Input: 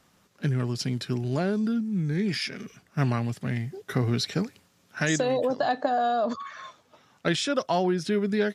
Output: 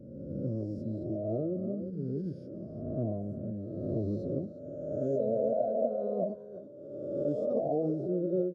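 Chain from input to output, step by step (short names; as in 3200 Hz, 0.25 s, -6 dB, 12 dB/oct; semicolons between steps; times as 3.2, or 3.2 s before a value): spectral swells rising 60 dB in 1.52 s; elliptic low-pass 660 Hz, stop band 40 dB; low shelf 410 Hz -8 dB; de-hum 95.78 Hz, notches 3; on a send: echo 0.346 s -14 dB; on the sum: formant-preserving pitch shift -2.5 st; gain -1.5 dB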